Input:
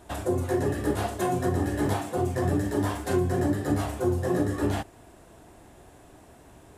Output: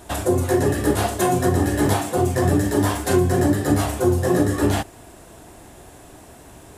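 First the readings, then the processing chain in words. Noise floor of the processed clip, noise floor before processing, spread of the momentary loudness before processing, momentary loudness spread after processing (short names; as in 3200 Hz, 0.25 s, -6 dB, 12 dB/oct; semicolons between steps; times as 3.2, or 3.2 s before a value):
-45 dBFS, -53 dBFS, 3 LU, 3 LU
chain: high shelf 3800 Hz +6 dB; gain +7 dB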